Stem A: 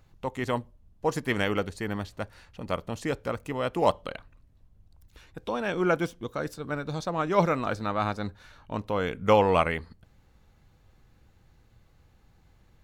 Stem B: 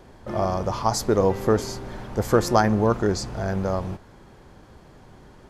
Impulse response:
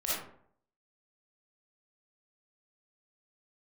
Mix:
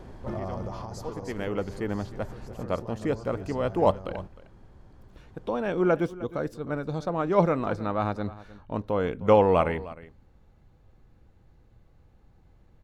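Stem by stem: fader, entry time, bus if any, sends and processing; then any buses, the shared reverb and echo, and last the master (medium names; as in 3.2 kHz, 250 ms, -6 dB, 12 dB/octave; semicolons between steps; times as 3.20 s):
1.08 s -17 dB -> 1.79 s -4.5 dB, 0.00 s, no send, echo send -18 dB, peaking EQ 490 Hz +5.5 dB 2.6 oct
+1.0 dB, 0.00 s, no send, echo send -12.5 dB, compression 5:1, threshold -28 dBFS, peak gain reduction 14 dB; peak limiter -24 dBFS, peak gain reduction 8 dB; auto duck -17 dB, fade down 1.95 s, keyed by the first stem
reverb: none
echo: delay 308 ms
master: tilt EQ -1.5 dB/octave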